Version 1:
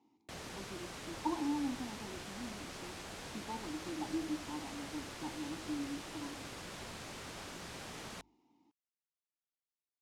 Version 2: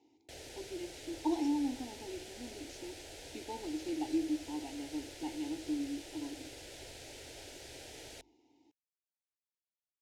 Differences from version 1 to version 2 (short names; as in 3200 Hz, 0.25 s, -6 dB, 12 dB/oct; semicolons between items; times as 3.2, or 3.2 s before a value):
speech +8.0 dB; master: add fixed phaser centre 470 Hz, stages 4